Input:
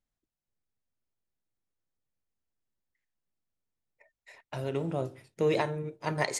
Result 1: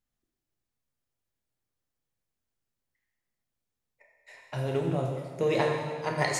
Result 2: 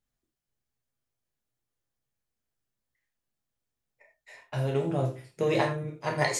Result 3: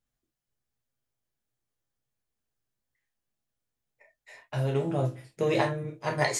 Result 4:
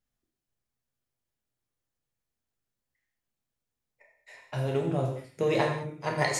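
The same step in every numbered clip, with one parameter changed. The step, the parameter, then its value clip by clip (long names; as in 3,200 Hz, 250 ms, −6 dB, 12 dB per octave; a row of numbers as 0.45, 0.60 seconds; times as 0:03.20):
reverb whose tail is shaped and stops, gate: 500, 130, 90, 240 milliseconds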